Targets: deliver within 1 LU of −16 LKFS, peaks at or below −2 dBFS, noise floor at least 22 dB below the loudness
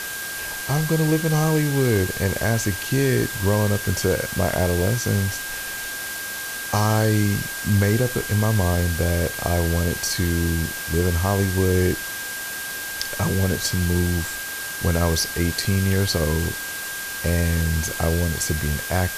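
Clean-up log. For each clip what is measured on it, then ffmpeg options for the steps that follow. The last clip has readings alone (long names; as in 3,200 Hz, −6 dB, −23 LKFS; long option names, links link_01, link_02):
interfering tone 1,600 Hz; level of the tone −31 dBFS; background noise floor −31 dBFS; target noise floor −44 dBFS; integrated loudness −22.0 LKFS; sample peak −5.0 dBFS; target loudness −16.0 LKFS
→ -af "bandreject=frequency=1600:width=30"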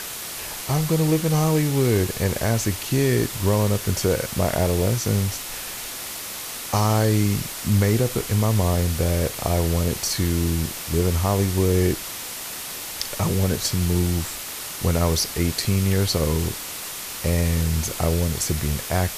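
interfering tone none found; background noise floor −33 dBFS; target noise floor −45 dBFS
→ -af "afftdn=noise_reduction=12:noise_floor=-33"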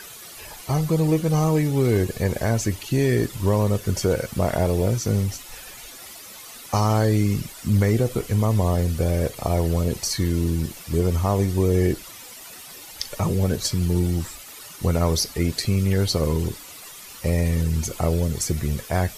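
background noise floor −41 dBFS; target noise floor −45 dBFS
→ -af "afftdn=noise_reduction=6:noise_floor=-41"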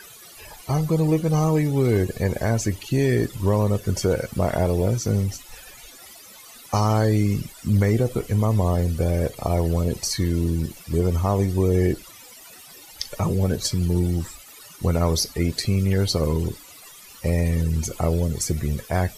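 background noise floor −45 dBFS; integrated loudness −23.0 LKFS; sample peak −7.0 dBFS; target loudness −16.0 LKFS
→ -af "volume=7dB,alimiter=limit=-2dB:level=0:latency=1"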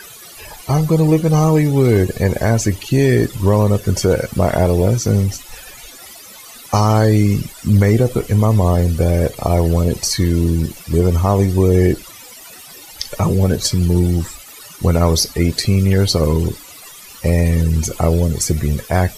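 integrated loudness −16.0 LKFS; sample peak −2.0 dBFS; background noise floor −38 dBFS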